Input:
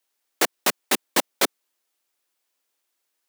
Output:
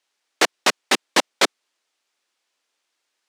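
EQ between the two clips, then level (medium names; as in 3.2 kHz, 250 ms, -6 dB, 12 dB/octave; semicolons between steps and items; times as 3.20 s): distance through air 91 m; tilt EQ +1.5 dB/octave; +5.0 dB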